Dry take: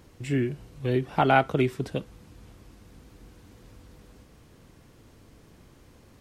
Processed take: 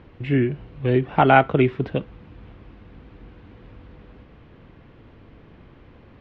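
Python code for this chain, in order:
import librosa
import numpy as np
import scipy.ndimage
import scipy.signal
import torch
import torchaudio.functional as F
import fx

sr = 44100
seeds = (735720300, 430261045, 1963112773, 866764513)

y = scipy.signal.sosfilt(scipy.signal.butter(4, 3100.0, 'lowpass', fs=sr, output='sos'), x)
y = y * librosa.db_to_amplitude(6.0)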